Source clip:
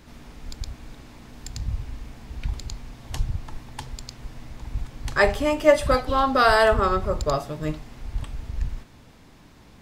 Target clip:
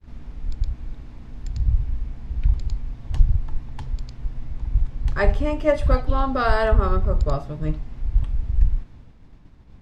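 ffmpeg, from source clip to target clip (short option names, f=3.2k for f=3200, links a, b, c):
-af "aemphasis=mode=reproduction:type=bsi,agate=range=-33dB:threshold=-35dB:ratio=3:detection=peak,volume=-4.5dB"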